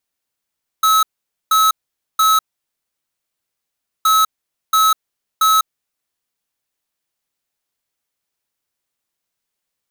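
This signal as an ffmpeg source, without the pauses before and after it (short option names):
-f lavfi -i "aevalsrc='0.237*(2*lt(mod(1290*t,1),0.5)-1)*clip(min(mod(mod(t,3.22),0.68),0.2-mod(mod(t,3.22),0.68))/0.005,0,1)*lt(mod(t,3.22),2.04)':d=6.44:s=44100"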